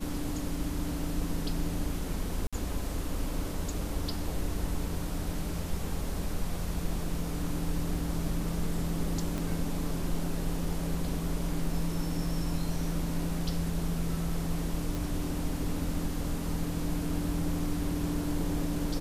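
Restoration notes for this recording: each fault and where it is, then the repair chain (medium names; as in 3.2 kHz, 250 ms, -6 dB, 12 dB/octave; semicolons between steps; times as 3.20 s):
2.47–2.53 s: dropout 56 ms
9.38 s: pop
14.95 s: pop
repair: de-click; interpolate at 2.47 s, 56 ms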